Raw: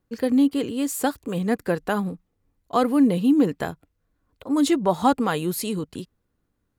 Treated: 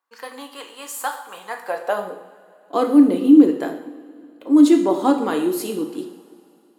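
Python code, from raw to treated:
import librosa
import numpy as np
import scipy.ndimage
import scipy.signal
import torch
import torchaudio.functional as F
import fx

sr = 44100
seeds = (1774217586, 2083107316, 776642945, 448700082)

y = fx.filter_sweep_highpass(x, sr, from_hz=1000.0, to_hz=320.0, start_s=1.49, end_s=2.38, q=3.2)
y = fx.rev_double_slope(y, sr, seeds[0], early_s=0.65, late_s=2.9, knee_db=-18, drr_db=3.5)
y = y * librosa.db_to_amplitude(-3.0)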